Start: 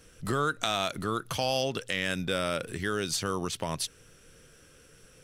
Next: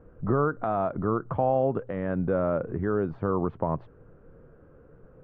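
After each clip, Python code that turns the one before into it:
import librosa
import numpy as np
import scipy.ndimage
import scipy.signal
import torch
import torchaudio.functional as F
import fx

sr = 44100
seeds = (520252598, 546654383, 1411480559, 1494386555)

y = scipy.signal.sosfilt(scipy.signal.butter(4, 1100.0, 'lowpass', fs=sr, output='sos'), x)
y = y * librosa.db_to_amplitude(6.0)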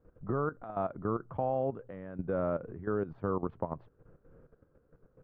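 y = fx.level_steps(x, sr, step_db=13)
y = y * librosa.db_to_amplitude(-4.5)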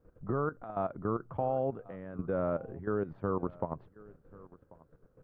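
y = x + 10.0 ** (-22.0 / 20.0) * np.pad(x, (int(1089 * sr / 1000.0), 0))[:len(x)]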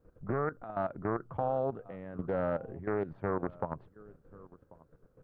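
y = fx.doppler_dist(x, sr, depth_ms=0.37)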